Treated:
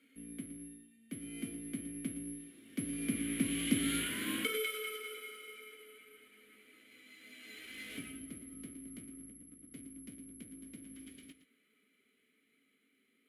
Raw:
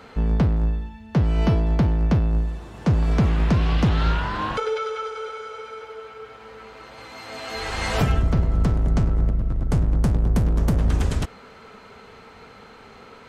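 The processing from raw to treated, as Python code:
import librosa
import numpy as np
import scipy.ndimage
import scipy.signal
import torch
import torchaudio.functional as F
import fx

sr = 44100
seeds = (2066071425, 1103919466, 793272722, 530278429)

y = fx.doppler_pass(x, sr, speed_mps=11, closest_m=7.2, pass_at_s=4.39)
y = (np.kron(y[::4], np.eye(4)[0]) * 4)[:len(y)]
y = fx.vowel_filter(y, sr, vowel='i')
y = fx.low_shelf(y, sr, hz=240.0, db=-10.5)
y = fx.doubler(y, sr, ms=18.0, db=-11.5)
y = y + 10.0 ** (-12.5 / 20.0) * np.pad(y, (int(116 * sr / 1000.0), 0))[:len(y)]
y = y * 10.0 ** (8.5 / 20.0)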